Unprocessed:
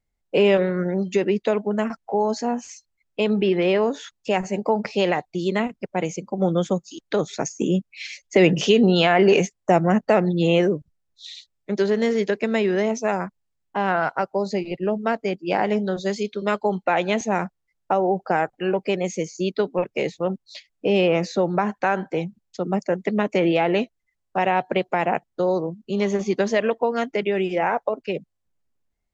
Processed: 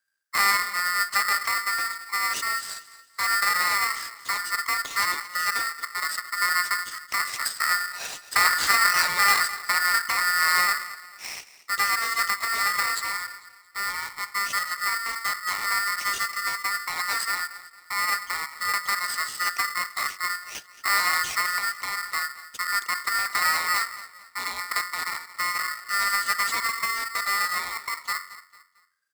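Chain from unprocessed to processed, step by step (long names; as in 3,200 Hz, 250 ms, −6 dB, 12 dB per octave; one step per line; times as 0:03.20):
Chebyshev band-stop filter 400–3,200 Hz, order 2
high-shelf EQ 4,400 Hz +8 dB
hum removal 45.93 Hz, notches 33
asymmetric clip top −25 dBFS
on a send: repeating echo 224 ms, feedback 37%, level −16 dB
on the sum: ring modulator with a square carrier 1,600 Hz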